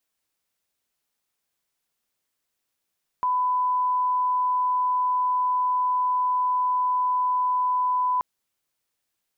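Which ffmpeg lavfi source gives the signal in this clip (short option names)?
-f lavfi -i "sine=f=1000:d=4.98:r=44100,volume=-1.94dB"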